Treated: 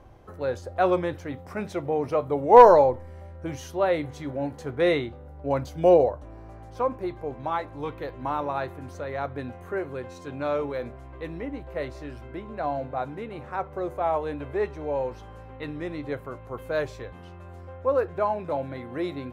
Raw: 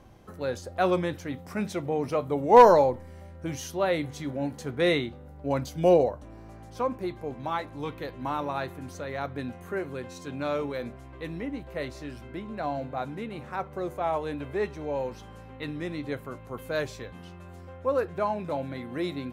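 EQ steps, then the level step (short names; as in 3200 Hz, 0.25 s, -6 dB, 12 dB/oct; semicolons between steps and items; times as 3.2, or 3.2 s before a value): bell 200 Hz -9 dB 1.2 oct; high shelf 2100 Hz -11.5 dB; +5.0 dB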